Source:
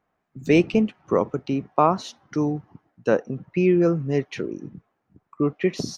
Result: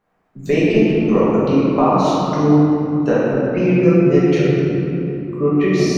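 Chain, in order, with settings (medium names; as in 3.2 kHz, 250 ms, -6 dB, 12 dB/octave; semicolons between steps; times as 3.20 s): compression, threshold -19 dBFS, peak gain reduction 7.5 dB; simulated room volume 160 m³, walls hard, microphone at 1.3 m; trim +1 dB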